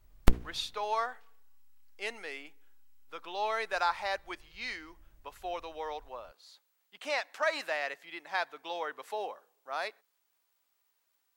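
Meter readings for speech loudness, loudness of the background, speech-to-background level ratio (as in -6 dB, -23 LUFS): -36.0 LUFS, -34.0 LUFS, -2.0 dB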